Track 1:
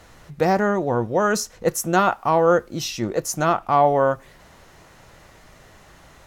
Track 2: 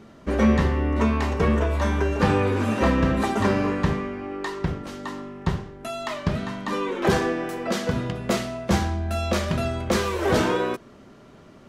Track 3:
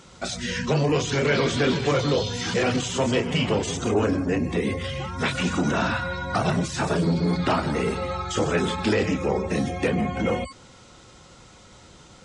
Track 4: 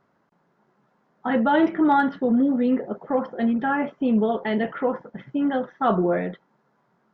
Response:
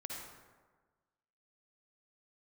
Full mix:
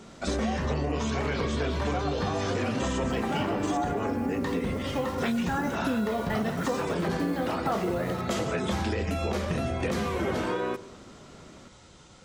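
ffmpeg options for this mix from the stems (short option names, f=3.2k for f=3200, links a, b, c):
-filter_complex "[0:a]asplit=3[a][b][c];[a]bandpass=f=730:t=q:w=8,volume=0dB[d];[b]bandpass=f=1.09k:t=q:w=8,volume=-6dB[e];[c]bandpass=f=2.44k:t=q:w=8,volume=-9dB[f];[d][e][f]amix=inputs=3:normalize=0,volume=-4dB,asplit=2[g][h];[1:a]alimiter=limit=-14.5dB:level=0:latency=1,adynamicequalizer=threshold=0.01:dfrequency=2800:dqfactor=0.7:tfrequency=2800:tqfactor=0.7:attack=5:release=100:ratio=0.375:range=2:mode=cutabove:tftype=highshelf,volume=-2dB,asplit=2[i][j];[j]volume=-17.5dB[k];[2:a]volume=-4dB[l];[3:a]acrusher=bits=6:mix=0:aa=0.000001,adelay=1850,volume=-2dB,asplit=2[m][n];[n]volume=-6dB[o];[h]apad=whole_len=400651[p];[m][p]sidechaincompress=threshold=-52dB:ratio=8:attack=16:release=712[q];[4:a]atrim=start_sample=2205[r];[k][o]amix=inputs=2:normalize=0[s];[s][r]afir=irnorm=-1:irlink=0[t];[g][i][l][q][t]amix=inputs=5:normalize=0,acompressor=threshold=-25dB:ratio=6"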